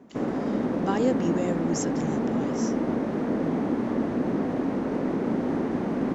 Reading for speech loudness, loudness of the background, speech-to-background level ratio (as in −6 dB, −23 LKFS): −30.5 LKFS, −27.5 LKFS, −3.0 dB